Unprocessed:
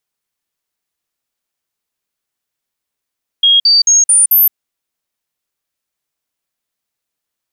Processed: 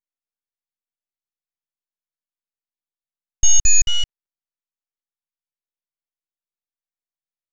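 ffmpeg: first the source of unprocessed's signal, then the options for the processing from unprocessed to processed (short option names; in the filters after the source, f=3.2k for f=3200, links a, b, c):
-f lavfi -i "aevalsrc='0.531*clip(min(mod(t,0.22),0.17-mod(t,0.22))/0.005,0,1)*sin(2*PI*3270*pow(2,floor(t/0.22)/2)*mod(t,0.22))':d=1.1:s=44100"
-af "lowpass=f=5.7k:w=0.5412,lowpass=f=5.7k:w=1.3066,afwtdn=0.0501,aresample=16000,aeval=exprs='abs(val(0))':c=same,aresample=44100"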